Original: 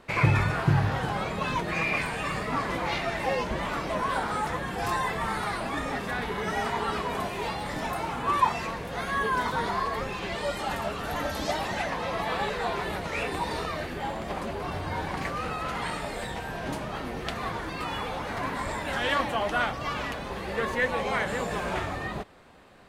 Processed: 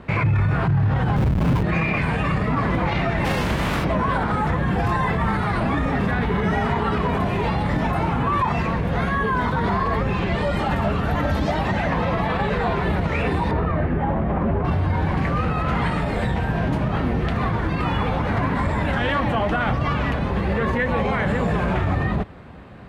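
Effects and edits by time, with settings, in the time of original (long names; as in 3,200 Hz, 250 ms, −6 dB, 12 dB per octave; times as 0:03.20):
0:01.16–0:01.63: comparator with hysteresis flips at −27 dBFS
0:03.24–0:03.83: compressing power law on the bin magnitudes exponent 0.43
0:13.51–0:14.65: low-pass filter 1,700 Hz
whole clip: high-pass filter 48 Hz; bass and treble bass +12 dB, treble −14 dB; brickwall limiter −21.5 dBFS; level +8.5 dB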